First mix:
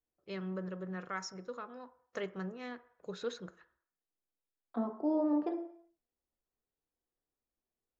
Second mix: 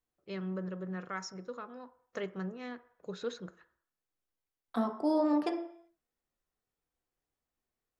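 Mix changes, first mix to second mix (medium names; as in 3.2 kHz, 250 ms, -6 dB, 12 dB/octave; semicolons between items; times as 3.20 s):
second voice: remove band-pass filter 300 Hz, Q 0.66; master: add peaking EQ 200 Hz +2.5 dB 1.8 oct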